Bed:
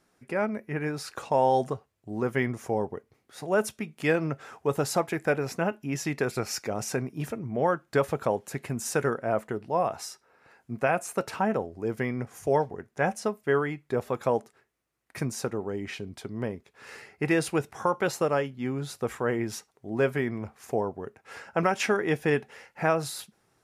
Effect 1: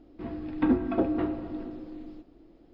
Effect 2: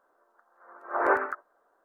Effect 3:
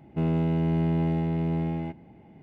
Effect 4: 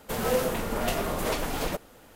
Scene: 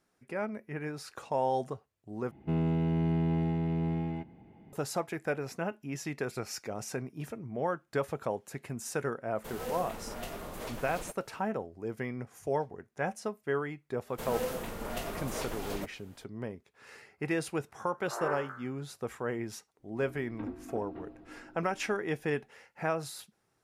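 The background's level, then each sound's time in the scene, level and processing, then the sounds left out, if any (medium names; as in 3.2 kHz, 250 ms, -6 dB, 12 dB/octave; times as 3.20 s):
bed -7 dB
2.31 s: replace with 3 -4 dB + band-stop 580 Hz, Q 8.8
9.35 s: add 4 -12.5 dB
14.09 s: add 4 -9 dB
17.17 s: add 2 -13 dB + spectral sustain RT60 0.58 s
19.77 s: add 1 -16.5 dB, fades 0.05 s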